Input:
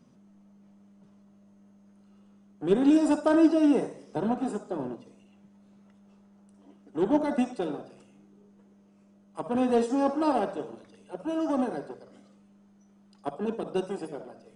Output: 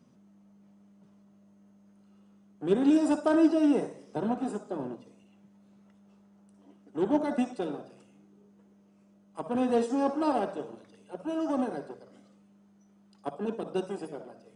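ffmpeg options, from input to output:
-af "highpass=43,volume=-2dB"

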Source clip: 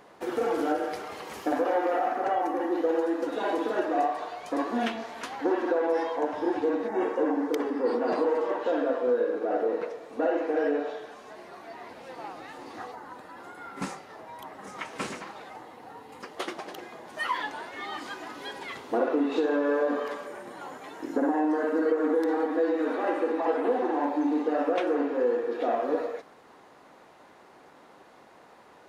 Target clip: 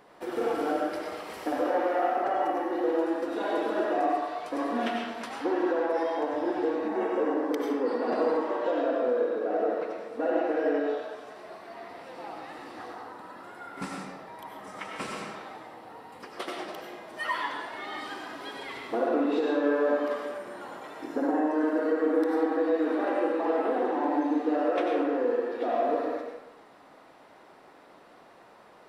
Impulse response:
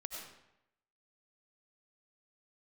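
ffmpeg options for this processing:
-filter_complex "[0:a]bandreject=f=6.6k:w=8.2[a];[1:a]atrim=start_sample=2205[b];[a][b]afir=irnorm=-1:irlink=0,volume=1.5dB"

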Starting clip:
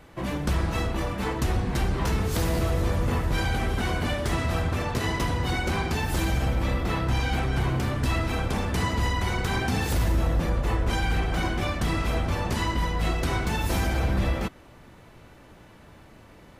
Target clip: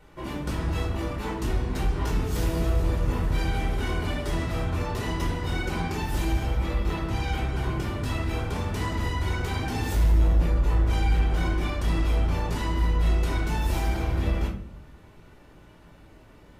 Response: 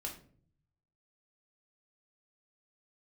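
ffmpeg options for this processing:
-filter_complex "[1:a]atrim=start_sample=2205[a];[0:a][a]afir=irnorm=-1:irlink=0,asoftclip=type=tanh:threshold=-8dB,volume=-2dB"

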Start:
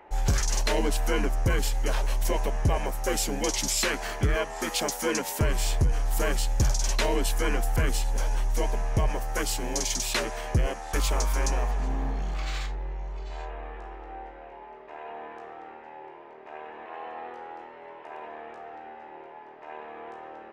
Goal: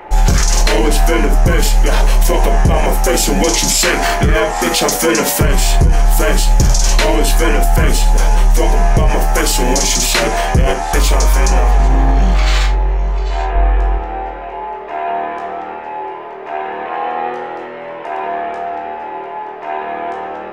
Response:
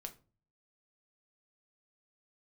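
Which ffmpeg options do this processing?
-filter_complex "[0:a]asettb=1/sr,asplit=3[a][b][c];[a]atrim=end=13.554[d];[b]atrim=start=13.55:end=13.98,asetpts=PTS-STARTPTS,afade=t=in:d=0.004:c=qsin,afade=t=out:st=0.426:d=0.004:c=qsin,lowshelf=f=130:g=11.5[e];[c]atrim=start=13.976[f];[d][e]acrossfade=d=0.004:c1=hsin:c2=qsin[g];[g][f]acrossfade=d=0.004:c1=qsin:c2=hsin[h];[1:a]atrim=start_sample=2205,atrim=end_sample=3969[i];[h][i]afir=irnorm=-1:irlink=0,alimiter=level_in=25dB:limit=-1dB:release=50:level=0:latency=1,volume=-2.5dB"

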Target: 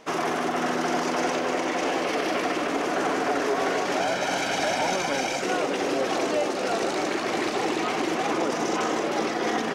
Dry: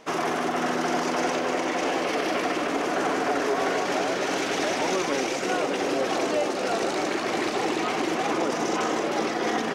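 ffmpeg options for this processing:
-filter_complex "[0:a]asettb=1/sr,asplit=3[a][b][c];[a]atrim=end=4.004[d];[b]atrim=start=4:end=5.41,asetpts=PTS-STARTPTS,afade=t=in:d=0.004:c=qsin,afade=t=out:st=1.406:d=0.004:c=qsin,aecho=1:1:1.3:0.51,atrim=end_sample=62181[e];[c]atrim=start=5.406[f];[d][e]acrossfade=d=0.004:c1=hsin:c2=qsin[g];[g][f]acrossfade=d=0.004:c1=qsin:c2=hsin"

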